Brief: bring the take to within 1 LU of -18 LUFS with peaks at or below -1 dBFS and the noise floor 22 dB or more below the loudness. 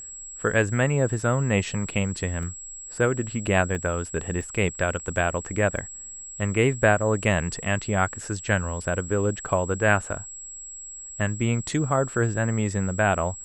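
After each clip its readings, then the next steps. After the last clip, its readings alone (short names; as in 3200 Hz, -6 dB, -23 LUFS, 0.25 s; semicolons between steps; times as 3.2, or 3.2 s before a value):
dropouts 4; longest dropout 1.2 ms; steady tone 7700 Hz; tone level -37 dBFS; loudness -25.0 LUFS; peak -5.0 dBFS; loudness target -18.0 LUFS
-> interpolate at 2.43/3.75/4.41/5.77, 1.2 ms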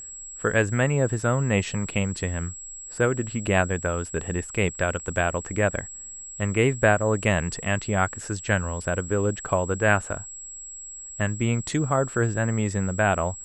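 dropouts 0; steady tone 7700 Hz; tone level -37 dBFS
-> notch 7700 Hz, Q 30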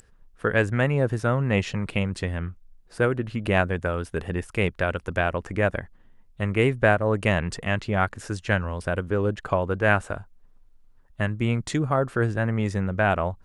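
steady tone none; loudness -25.0 LUFS; peak -5.5 dBFS; loudness target -18.0 LUFS
-> gain +7 dB; limiter -1 dBFS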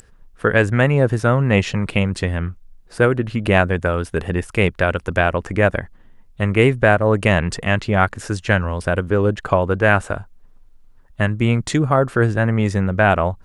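loudness -18.5 LUFS; peak -1.0 dBFS; noise floor -48 dBFS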